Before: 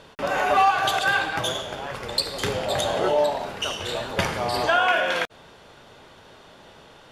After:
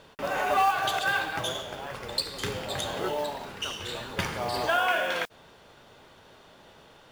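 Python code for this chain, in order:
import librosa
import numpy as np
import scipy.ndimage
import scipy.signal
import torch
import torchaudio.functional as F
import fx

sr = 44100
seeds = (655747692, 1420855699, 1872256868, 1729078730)

y = fx.peak_eq(x, sr, hz=640.0, db=-7.5, octaves=0.65, at=(2.2, 4.34))
y = fx.mod_noise(y, sr, seeds[0], snr_db=23)
y = y * 10.0 ** (-5.0 / 20.0)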